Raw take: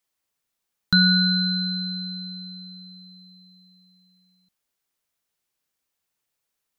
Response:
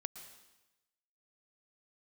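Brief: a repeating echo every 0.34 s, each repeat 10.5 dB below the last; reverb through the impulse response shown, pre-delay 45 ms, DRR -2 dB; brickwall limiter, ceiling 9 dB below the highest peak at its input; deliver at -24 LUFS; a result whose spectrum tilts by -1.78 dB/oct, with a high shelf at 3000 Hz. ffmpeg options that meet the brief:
-filter_complex "[0:a]highshelf=f=3k:g=-9,alimiter=limit=-18dB:level=0:latency=1,aecho=1:1:340|680|1020:0.299|0.0896|0.0269,asplit=2[a][b];[1:a]atrim=start_sample=2205,adelay=45[c];[b][c]afir=irnorm=-1:irlink=0,volume=4.5dB[d];[a][d]amix=inputs=2:normalize=0,volume=-1dB"

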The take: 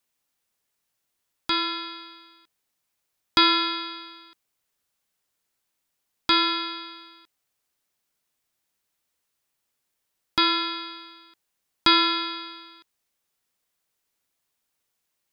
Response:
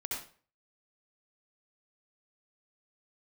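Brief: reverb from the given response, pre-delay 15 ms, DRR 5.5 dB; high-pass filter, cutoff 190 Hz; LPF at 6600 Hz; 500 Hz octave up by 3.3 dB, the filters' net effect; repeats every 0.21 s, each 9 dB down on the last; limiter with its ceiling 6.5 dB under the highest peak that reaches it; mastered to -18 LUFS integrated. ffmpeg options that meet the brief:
-filter_complex "[0:a]highpass=190,lowpass=6.6k,equalizer=f=500:t=o:g=8.5,alimiter=limit=-11dB:level=0:latency=1,aecho=1:1:210|420|630|840:0.355|0.124|0.0435|0.0152,asplit=2[a][b];[1:a]atrim=start_sample=2205,adelay=15[c];[b][c]afir=irnorm=-1:irlink=0,volume=-7.5dB[d];[a][d]amix=inputs=2:normalize=0,volume=5dB"

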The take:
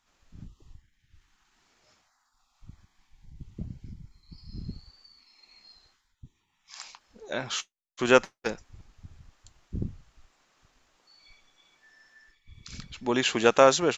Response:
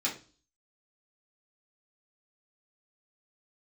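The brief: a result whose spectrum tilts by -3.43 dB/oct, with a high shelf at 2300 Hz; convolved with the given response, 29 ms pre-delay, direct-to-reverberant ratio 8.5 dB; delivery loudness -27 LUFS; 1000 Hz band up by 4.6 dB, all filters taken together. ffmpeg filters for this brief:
-filter_complex "[0:a]equalizer=f=1k:t=o:g=8,highshelf=f=2.3k:g=-7,asplit=2[a][b];[1:a]atrim=start_sample=2205,adelay=29[c];[b][c]afir=irnorm=-1:irlink=0,volume=-14.5dB[d];[a][d]amix=inputs=2:normalize=0,volume=-3dB"

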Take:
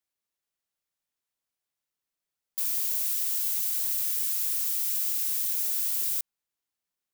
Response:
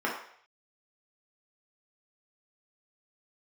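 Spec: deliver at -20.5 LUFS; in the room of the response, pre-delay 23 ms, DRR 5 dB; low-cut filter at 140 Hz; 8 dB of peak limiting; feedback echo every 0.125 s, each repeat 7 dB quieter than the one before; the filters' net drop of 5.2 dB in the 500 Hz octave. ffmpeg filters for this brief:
-filter_complex "[0:a]highpass=140,equalizer=f=500:t=o:g=-7,alimiter=limit=-23dB:level=0:latency=1,aecho=1:1:125|250|375|500|625:0.447|0.201|0.0905|0.0407|0.0183,asplit=2[a][b];[1:a]atrim=start_sample=2205,adelay=23[c];[b][c]afir=irnorm=-1:irlink=0,volume=-15.5dB[d];[a][d]amix=inputs=2:normalize=0,volume=8.5dB"

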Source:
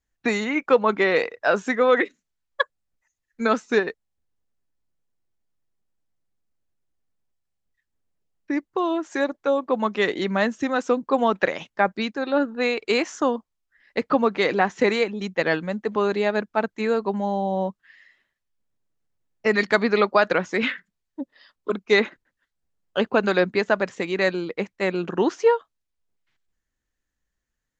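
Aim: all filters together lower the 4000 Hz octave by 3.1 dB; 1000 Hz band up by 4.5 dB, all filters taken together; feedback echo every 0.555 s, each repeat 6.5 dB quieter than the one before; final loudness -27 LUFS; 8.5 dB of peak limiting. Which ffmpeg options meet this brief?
-af "equalizer=f=1k:t=o:g=6,equalizer=f=4k:t=o:g=-4,alimiter=limit=-10.5dB:level=0:latency=1,aecho=1:1:555|1110|1665|2220|2775|3330:0.473|0.222|0.105|0.0491|0.0231|0.0109,volume=-3.5dB"

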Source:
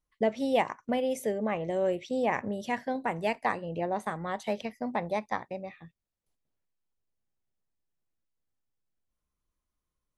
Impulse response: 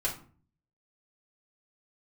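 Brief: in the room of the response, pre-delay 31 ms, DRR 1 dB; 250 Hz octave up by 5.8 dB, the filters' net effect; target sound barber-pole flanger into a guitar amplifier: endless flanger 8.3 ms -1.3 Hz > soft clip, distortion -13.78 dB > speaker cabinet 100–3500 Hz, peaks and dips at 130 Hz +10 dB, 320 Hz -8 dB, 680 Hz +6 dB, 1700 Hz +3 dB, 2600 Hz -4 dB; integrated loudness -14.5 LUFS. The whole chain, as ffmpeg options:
-filter_complex "[0:a]equalizer=f=250:t=o:g=8,asplit=2[a][b];[1:a]atrim=start_sample=2205,adelay=31[c];[b][c]afir=irnorm=-1:irlink=0,volume=-7dB[d];[a][d]amix=inputs=2:normalize=0,asplit=2[e][f];[f]adelay=8.3,afreqshift=-1.3[g];[e][g]amix=inputs=2:normalize=1,asoftclip=threshold=-22dB,highpass=100,equalizer=f=130:t=q:w=4:g=10,equalizer=f=320:t=q:w=4:g=-8,equalizer=f=680:t=q:w=4:g=6,equalizer=f=1.7k:t=q:w=4:g=3,equalizer=f=2.6k:t=q:w=4:g=-4,lowpass=f=3.5k:w=0.5412,lowpass=f=3.5k:w=1.3066,volume=15.5dB"

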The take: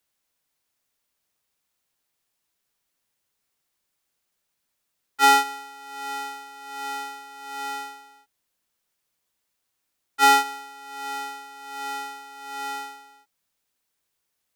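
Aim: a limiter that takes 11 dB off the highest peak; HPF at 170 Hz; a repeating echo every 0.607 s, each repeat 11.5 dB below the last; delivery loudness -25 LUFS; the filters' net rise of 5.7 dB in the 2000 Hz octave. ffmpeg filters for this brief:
-af "highpass=170,equalizer=f=2k:t=o:g=6.5,alimiter=limit=-14.5dB:level=0:latency=1,aecho=1:1:607|1214|1821:0.266|0.0718|0.0194,volume=5dB"

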